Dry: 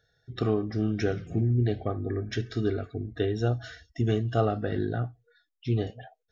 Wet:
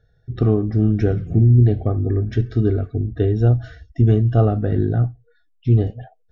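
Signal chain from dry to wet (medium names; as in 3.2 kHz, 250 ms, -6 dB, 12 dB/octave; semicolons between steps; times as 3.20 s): tilt EQ -3.5 dB/octave; trim +2 dB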